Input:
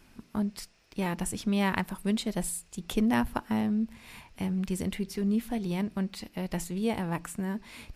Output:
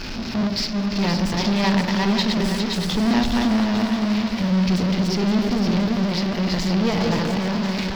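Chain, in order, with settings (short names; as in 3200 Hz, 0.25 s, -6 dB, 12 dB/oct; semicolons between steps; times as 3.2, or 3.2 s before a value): regenerating reverse delay 0.205 s, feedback 48%, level -4 dB; harmonic-percussive split percussive -6 dB; power-law curve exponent 0.35; resonant high shelf 6900 Hz -12.5 dB, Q 3; on a send: split-band echo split 910 Hz, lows 86 ms, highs 0.519 s, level -7 dB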